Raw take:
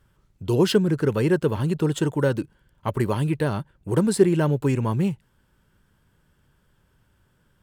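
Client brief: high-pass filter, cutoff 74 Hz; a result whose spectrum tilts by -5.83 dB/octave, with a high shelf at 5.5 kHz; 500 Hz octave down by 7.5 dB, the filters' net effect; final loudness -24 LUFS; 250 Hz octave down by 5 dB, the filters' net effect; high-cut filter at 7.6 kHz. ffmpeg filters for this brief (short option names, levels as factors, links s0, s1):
-af "highpass=74,lowpass=7600,equalizer=f=250:t=o:g=-5,equalizer=f=500:t=o:g=-8,highshelf=f=5500:g=4.5,volume=1.41"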